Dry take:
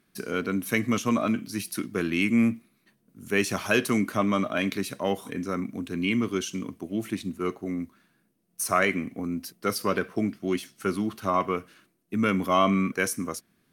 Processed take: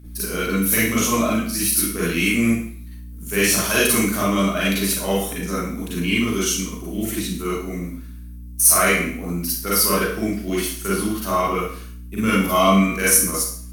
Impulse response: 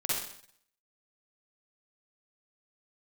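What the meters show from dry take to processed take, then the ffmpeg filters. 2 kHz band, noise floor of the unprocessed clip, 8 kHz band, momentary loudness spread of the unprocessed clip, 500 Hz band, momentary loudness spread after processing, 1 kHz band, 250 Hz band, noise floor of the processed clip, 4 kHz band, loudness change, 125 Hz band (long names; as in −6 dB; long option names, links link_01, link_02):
+7.0 dB, −70 dBFS, +17.5 dB, 10 LU, +5.5 dB, 14 LU, +5.5 dB, +5.0 dB, −36 dBFS, +11.0 dB, +8.0 dB, +7.0 dB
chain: -filter_complex "[0:a]aeval=exprs='val(0)+0.0112*(sin(2*PI*60*n/s)+sin(2*PI*2*60*n/s)/2+sin(2*PI*3*60*n/s)/3+sin(2*PI*4*60*n/s)/4+sin(2*PI*5*60*n/s)/5)':channel_layout=same,acontrast=49,aemphasis=mode=production:type=75kf[link_01];[1:a]atrim=start_sample=2205,asetrate=52920,aresample=44100[link_02];[link_01][link_02]afir=irnorm=-1:irlink=0,volume=-6dB"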